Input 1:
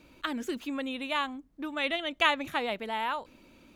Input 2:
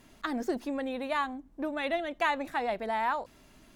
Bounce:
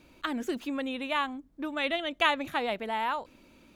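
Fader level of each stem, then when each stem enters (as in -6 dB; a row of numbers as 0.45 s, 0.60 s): -1.0 dB, -11.5 dB; 0.00 s, 0.00 s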